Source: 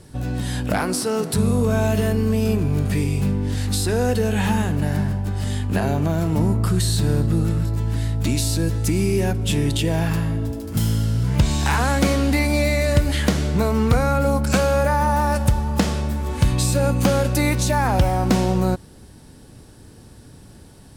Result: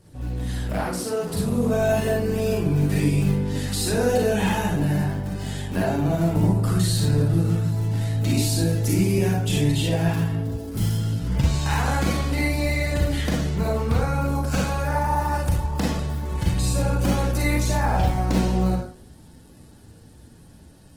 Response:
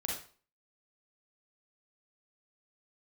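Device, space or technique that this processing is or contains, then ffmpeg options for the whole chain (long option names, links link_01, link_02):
speakerphone in a meeting room: -filter_complex "[1:a]atrim=start_sample=2205[link_01];[0:a][link_01]afir=irnorm=-1:irlink=0,dynaudnorm=framelen=190:gausssize=17:maxgain=11.5dB,volume=-7.5dB" -ar 48000 -c:a libopus -b:a 16k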